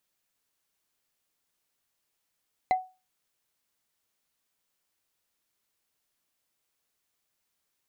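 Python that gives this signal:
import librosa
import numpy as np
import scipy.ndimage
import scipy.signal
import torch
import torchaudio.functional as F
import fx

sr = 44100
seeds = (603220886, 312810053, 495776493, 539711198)

y = fx.strike_wood(sr, length_s=0.45, level_db=-17, body='bar', hz=745.0, decay_s=0.29, tilt_db=10, modes=5)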